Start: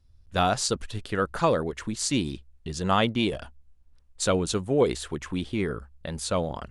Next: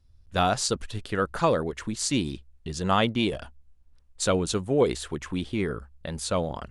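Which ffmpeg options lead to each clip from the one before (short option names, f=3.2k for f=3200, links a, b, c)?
-af anull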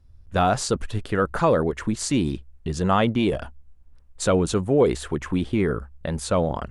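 -filter_complex "[0:a]highshelf=f=8.9k:g=-8,asplit=2[a][b];[b]alimiter=limit=-21dB:level=0:latency=1:release=13,volume=2dB[c];[a][c]amix=inputs=2:normalize=0,equalizer=f=4.2k:t=o:w=1.7:g=-7"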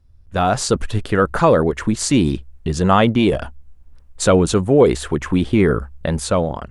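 -af "dynaudnorm=f=160:g=7:m=9dB"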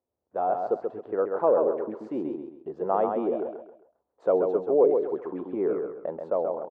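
-af "asuperpass=centerf=570:order=4:qfactor=1.1,aecho=1:1:133|266|399|532:0.562|0.186|0.0612|0.0202,volume=-7dB"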